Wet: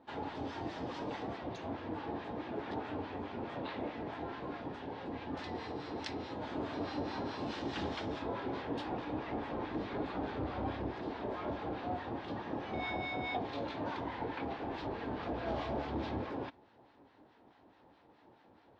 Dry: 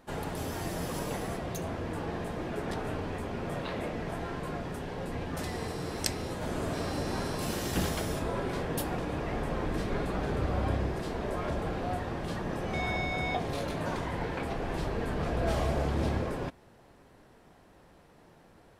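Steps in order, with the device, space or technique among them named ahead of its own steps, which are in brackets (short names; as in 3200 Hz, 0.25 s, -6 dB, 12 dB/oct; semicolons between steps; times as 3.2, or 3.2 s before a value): guitar amplifier with harmonic tremolo (harmonic tremolo 4.7 Hz, depth 70%, crossover 1000 Hz; soft clip -24 dBFS, distortion -20 dB; speaker cabinet 93–4500 Hz, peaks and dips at 160 Hz -9 dB, 290 Hz +7 dB, 870 Hz +7 dB, 3600 Hz +3 dB); gain -3 dB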